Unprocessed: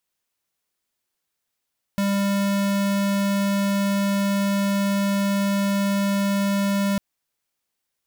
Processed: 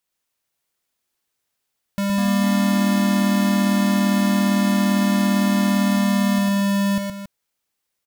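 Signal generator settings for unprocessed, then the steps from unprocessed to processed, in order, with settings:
tone square 199 Hz -21.5 dBFS 5.00 s
on a send: loudspeakers at several distances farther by 41 m -4 dB, 95 m -11 dB; on the sum: echoes that change speed 0.516 s, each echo +3 st, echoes 3, each echo -6 dB

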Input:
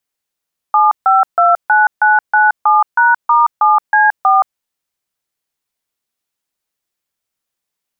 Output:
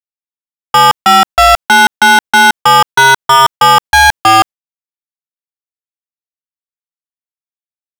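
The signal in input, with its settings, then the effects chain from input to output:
DTMF "7529997#*7C4", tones 0.173 s, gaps 0.146 s, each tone -9.5 dBFS
gate with hold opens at -14 dBFS; sample leveller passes 5

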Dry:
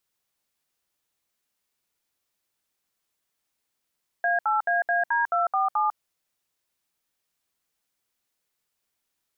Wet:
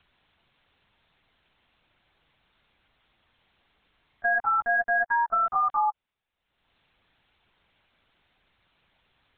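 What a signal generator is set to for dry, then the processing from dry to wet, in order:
DTMF "A8AAD247", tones 0.149 s, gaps 67 ms, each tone -23 dBFS
upward compressor, threshold -46 dBFS; LPC vocoder at 8 kHz pitch kept

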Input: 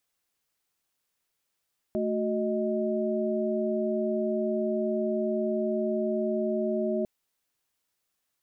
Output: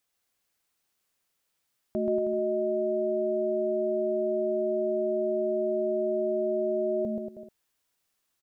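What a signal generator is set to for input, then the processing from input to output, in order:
chord A3/F#4/D#5 sine, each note -29.5 dBFS 5.10 s
bouncing-ball echo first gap 0.13 s, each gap 0.8×, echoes 5

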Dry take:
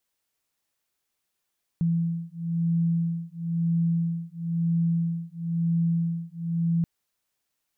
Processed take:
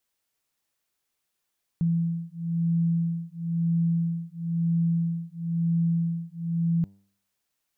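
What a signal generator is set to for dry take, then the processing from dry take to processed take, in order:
beating tones 167 Hz, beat 1 Hz, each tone -26 dBFS 5.03 s
de-hum 98.76 Hz, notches 10

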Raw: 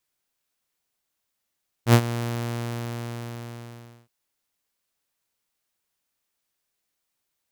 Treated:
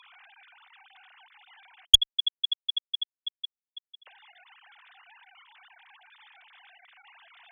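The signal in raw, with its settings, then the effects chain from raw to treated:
ADSR saw 118 Hz, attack 78 ms, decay 68 ms, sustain -15.5 dB, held 0.34 s, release 1.88 s -7.5 dBFS
sine-wave speech; HPF 720 Hz 12 dB/oct; one-sided clip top -6.5 dBFS, bottom -1 dBFS

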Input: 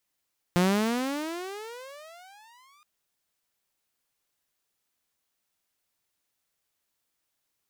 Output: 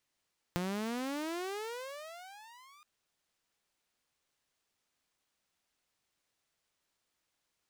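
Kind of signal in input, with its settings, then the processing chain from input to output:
gliding synth tone saw, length 2.27 s, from 173 Hz, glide +34 st, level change -38.5 dB, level -16.5 dB
median filter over 3 samples; compressor 6:1, threshold -35 dBFS

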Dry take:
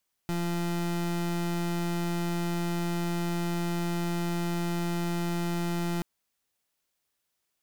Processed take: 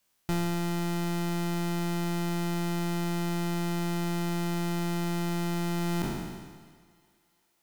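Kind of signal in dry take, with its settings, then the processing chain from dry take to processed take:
pulse 172 Hz, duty 31% -29.5 dBFS 5.73 s
spectral trails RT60 1.47 s; vocal rider 0.5 s; thinning echo 0.344 s, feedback 53%, high-pass 260 Hz, level -23 dB

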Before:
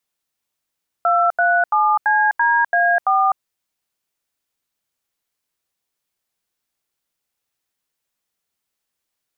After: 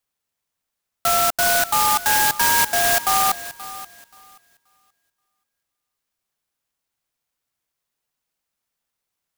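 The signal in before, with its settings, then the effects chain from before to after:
DTMF "237CDA4", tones 0.253 s, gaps 83 ms, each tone -15.5 dBFS
bell 350 Hz -11.5 dB 1.3 oct; thinning echo 0.529 s, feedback 26%, high-pass 920 Hz, level -13.5 dB; clock jitter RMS 0.11 ms

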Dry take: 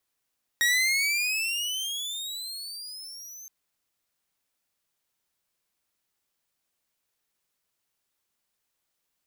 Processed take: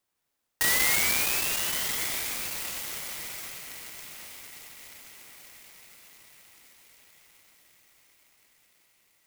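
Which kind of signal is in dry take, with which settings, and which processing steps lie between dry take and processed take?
gliding synth tone saw, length 2.87 s, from 1880 Hz, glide +21 st, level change -21 dB, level -17 dB
reverse delay 0.156 s, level -6 dB; diffused feedback echo 1.126 s, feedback 52%, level -11 dB; clock jitter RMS 0.082 ms

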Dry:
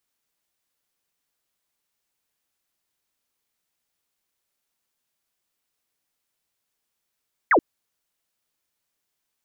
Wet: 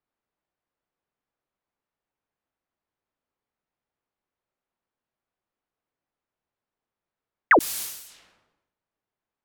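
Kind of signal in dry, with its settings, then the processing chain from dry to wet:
laser zap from 2200 Hz, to 260 Hz, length 0.08 s sine, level -13 dB
low-pass opened by the level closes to 1000 Hz, open at -41.5 dBFS; high shelf 2500 Hz +12 dB; sustainer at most 64 dB/s

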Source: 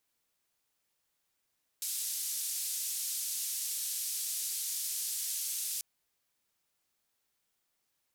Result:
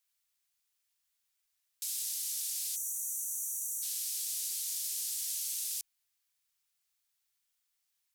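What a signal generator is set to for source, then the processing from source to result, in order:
noise band 5200–13000 Hz, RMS -36 dBFS 3.99 s
spectral gain 2.76–3.83, 860–5700 Hz -25 dB; passive tone stack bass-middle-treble 10-0-10

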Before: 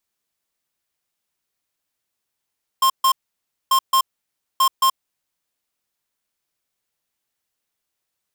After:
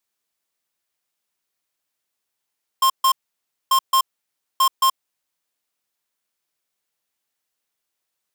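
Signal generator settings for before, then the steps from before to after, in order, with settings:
beep pattern square 1060 Hz, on 0.08 s, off 0.14 s, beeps 2, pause 0.59 s, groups 3, -15 dBFS
low shelf 180 Hz -8 dB

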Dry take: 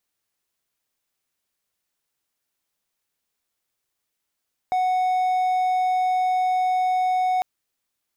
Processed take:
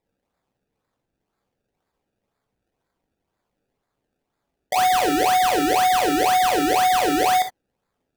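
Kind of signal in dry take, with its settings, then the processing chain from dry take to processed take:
tone triangle 739 Hz -16.5 dBFS 2.70 s
decimation with a swept rate 29×, swing 100% 2 Hz; non-linear reverb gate 90 ms flat, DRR 3.5 dB

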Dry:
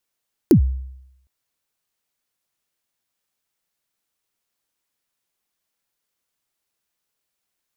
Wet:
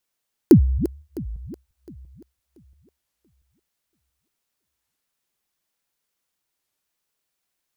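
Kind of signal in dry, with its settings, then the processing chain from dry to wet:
kick drum length 0.76 s, from 400 Hz, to 65 Hz, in 96 ms, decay 0.82 s, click on, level -6 dB
regenerating reverse delay 0.342 s, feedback 52%, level -12 dB; dynamic EQ 330 Hz, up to +3 dB, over -27 dBFS, Q 0.98; record warp 33 1/3 rpm, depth 250 cents

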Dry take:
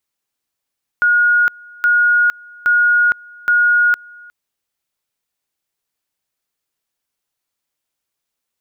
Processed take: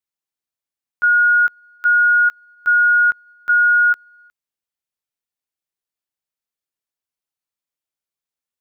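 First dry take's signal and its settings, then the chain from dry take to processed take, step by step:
two-level tone 1440 Hz -9.5 dBFS, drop 26.5 dB, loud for 0.46 s, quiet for 0.36 s, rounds 4
level quantiser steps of 13 dB

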